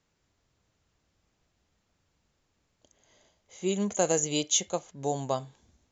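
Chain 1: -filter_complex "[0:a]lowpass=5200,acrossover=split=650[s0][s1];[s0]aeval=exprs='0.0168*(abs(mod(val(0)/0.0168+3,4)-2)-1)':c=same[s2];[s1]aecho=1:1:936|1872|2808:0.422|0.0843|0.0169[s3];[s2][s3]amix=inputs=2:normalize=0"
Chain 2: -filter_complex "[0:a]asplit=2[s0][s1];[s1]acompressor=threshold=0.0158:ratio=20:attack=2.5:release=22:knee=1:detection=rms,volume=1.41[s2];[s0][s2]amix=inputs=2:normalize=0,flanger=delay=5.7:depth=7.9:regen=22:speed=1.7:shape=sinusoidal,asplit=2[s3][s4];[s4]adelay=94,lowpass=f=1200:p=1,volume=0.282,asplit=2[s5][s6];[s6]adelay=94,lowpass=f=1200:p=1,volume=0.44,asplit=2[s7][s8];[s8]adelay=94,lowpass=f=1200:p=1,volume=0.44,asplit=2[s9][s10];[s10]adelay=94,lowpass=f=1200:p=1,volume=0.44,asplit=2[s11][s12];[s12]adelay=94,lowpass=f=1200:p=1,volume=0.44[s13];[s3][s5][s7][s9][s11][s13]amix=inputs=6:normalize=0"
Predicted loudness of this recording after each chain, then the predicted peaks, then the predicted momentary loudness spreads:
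-34.5 LUFS, -29.5 LUFS; -15.0 dBFS, -12.5 dBFS; 10 LU, 9 LU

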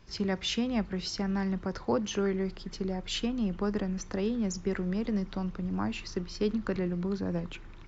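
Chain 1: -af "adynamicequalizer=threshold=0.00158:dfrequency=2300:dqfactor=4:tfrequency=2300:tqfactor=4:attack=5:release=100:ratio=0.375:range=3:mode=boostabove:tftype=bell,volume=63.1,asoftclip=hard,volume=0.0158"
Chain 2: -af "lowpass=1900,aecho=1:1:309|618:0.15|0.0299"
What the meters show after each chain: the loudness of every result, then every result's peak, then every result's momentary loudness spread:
-39.0 LUFS, -32.5 LUFS; -36.0 dBFS, -17.5 dBFS; 3 LU, 5 LU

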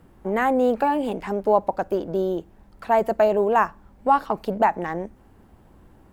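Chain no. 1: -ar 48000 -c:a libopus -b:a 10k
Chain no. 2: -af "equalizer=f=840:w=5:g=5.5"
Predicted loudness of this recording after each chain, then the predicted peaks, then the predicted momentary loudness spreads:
-23.0 LUFS, -20.5 LUFS; -6.5 dBFS, -2.5 dBFS; 10 LU, 11 LU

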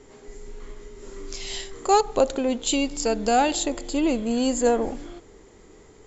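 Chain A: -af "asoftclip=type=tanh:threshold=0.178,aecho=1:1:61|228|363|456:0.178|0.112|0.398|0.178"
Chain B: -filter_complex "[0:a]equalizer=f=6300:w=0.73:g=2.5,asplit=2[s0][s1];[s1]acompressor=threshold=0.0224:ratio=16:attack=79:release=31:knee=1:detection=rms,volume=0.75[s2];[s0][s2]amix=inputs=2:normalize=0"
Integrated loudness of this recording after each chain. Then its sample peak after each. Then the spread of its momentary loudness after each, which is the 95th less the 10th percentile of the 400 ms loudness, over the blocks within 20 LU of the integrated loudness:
-25.0 LUFS, -21.5 LUFS; -12.5 dBFS, -5.5 dBFS; 20 LU, 20 LU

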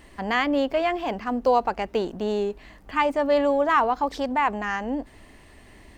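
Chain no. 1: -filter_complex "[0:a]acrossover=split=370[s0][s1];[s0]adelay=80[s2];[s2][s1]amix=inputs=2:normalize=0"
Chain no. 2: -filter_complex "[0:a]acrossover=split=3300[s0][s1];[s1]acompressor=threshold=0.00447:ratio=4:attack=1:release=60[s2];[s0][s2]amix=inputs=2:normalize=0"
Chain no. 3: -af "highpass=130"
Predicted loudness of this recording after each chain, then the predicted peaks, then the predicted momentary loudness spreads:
-25.0 LUFS, -24.5 LUFS, -24.5 LUFS; -9.0 dBFS, -9.0 dBFS, -9.0 dBFS; 9 LU, 9 LU, 8 LU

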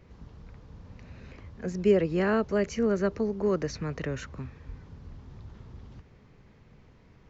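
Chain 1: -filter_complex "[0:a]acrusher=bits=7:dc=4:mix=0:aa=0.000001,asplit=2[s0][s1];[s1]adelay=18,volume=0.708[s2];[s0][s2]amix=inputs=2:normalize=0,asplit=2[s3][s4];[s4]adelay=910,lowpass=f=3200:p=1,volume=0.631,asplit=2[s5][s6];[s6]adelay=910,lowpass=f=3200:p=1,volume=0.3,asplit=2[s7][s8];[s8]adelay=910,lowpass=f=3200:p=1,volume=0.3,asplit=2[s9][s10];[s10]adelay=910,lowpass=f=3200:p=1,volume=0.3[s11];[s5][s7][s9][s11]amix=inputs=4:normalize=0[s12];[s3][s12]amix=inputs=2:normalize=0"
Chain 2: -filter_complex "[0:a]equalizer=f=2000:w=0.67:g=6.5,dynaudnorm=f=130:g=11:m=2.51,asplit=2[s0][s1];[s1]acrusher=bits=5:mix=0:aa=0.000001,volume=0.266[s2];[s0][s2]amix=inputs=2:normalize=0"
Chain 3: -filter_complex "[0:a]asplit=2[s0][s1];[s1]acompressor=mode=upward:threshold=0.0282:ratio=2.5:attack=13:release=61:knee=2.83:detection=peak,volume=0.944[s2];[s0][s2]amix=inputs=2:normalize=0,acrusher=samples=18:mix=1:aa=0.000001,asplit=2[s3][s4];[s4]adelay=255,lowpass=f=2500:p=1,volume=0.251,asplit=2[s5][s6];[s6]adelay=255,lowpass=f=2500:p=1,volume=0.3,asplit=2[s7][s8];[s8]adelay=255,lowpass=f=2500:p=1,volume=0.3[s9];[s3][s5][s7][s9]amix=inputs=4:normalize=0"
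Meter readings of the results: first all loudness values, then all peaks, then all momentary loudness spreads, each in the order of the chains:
-26.0 LUFS, -18.0 LUFS, -22.0 LUFS; -9.0 dBFS, -1.5 dBFS, -6.0 dBFS; 18 LU, 22 LU, 20 LU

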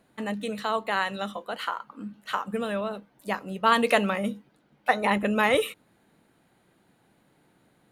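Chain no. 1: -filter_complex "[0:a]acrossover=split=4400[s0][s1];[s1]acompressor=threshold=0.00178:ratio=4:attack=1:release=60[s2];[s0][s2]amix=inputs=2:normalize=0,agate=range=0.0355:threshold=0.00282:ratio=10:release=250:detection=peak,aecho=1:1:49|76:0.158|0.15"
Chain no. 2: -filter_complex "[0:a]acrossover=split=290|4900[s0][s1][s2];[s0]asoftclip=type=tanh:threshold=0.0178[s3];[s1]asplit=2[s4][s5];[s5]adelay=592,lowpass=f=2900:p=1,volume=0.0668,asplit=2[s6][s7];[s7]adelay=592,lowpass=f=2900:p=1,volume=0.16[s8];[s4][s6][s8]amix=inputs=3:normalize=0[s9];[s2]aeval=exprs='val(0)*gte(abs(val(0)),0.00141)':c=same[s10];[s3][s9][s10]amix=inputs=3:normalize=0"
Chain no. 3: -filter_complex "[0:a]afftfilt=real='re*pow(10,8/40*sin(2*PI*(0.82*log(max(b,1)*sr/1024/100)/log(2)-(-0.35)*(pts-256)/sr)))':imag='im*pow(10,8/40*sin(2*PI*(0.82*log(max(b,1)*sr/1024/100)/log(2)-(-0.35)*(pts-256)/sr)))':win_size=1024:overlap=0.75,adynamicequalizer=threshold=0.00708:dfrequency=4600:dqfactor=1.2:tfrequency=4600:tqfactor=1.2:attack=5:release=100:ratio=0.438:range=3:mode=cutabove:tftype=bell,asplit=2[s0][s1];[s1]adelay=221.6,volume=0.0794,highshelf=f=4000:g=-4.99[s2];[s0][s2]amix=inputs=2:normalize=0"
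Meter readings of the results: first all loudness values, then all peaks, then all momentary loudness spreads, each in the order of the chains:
-27.0 LUFS, -27.5 LUFS, -26.0 LUFS; -7.0 dBFS, -6.5 dBFS, -5.0 dBFS; 12 LU, 13 LU, 14 LU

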